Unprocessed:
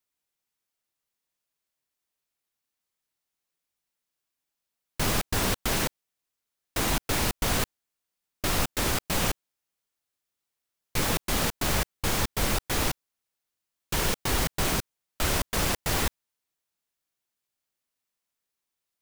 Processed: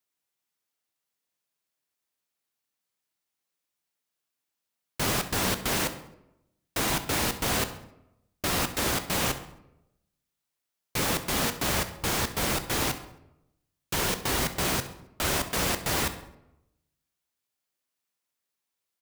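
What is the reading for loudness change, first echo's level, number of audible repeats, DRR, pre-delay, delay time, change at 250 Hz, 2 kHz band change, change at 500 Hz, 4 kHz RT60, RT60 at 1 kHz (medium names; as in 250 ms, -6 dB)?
0.0 dB, -17.0 dB, 1, 9.0 dB, 13 ms, 67 ms, 0.0 dB, +0.5 dB, +0.5 dB, 0.55 s, 0.80 s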